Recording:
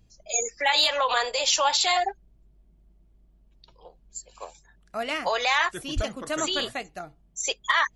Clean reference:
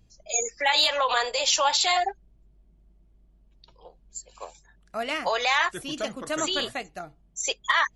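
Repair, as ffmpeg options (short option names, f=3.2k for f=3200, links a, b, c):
-filter_complex "[0:a]asplit=3[a][b][c];[a]afade=t=out:st=5.95:d=0.02[d];[b]highpass=f=140:w=0.5412,highpass=f=140:w=1.3066,afade=t=in:st=5.95:d=0.02,afade=t=out:st=6.07:d=0.02[e];[c]afade=t=in:st=6.07:d=0.02[f];[d][e][f]amix=inputs=3:normalize=0"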